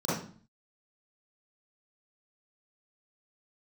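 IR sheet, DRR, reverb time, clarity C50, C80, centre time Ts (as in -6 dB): -11.0 dB, 0.45 s, -1.0 dB, 6.5 dB, 60 ms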